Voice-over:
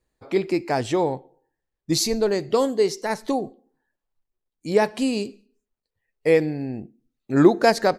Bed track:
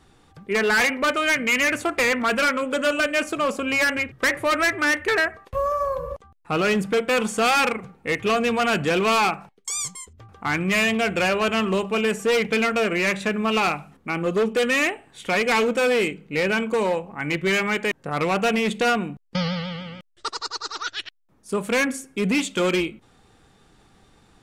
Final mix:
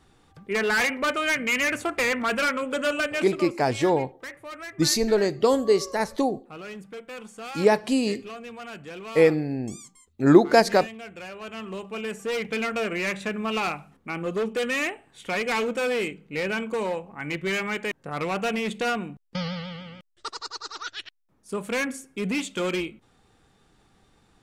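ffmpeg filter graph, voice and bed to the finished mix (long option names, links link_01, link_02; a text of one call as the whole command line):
ffmpeg -i stem1.wav -i stem2.wav -filter_complex "[0:a]adelay=2900,volume=0dB[link_01];[1:a]volume=9dB,afade=type=out:start_time=2.97:duration=0.58:silence=0.188365,afade=type=in:start_time=11.34:duration=1.44:silence=0.237137[link_02];[link_01][link_02]amix=inputs=2:normalize=0" out.wav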